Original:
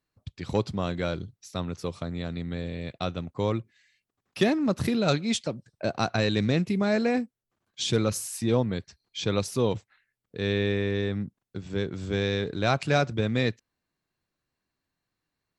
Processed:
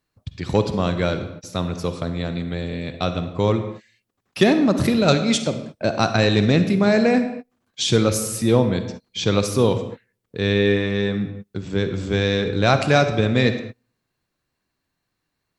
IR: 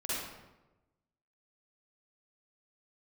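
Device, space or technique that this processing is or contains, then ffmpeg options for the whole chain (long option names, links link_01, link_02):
keyed gated reverb: -filter_complex "[0:a]asplit=3[link_01][link_02][link_03];[1:a]atrim=start_sample=2205[link_04];[link_02][link_04]afir=irnorm=-1:irlink=0[link_05];[link_03]apad=whole_len=687476[link_06];[link_05][link_06]sidechaingate=range=-35dB:threshold=-51dB:ratio=16:detection=peak,volume=-12dB[link_07];[link_01][link_07]amix=inputs=2:normalize=0,volume=6dB"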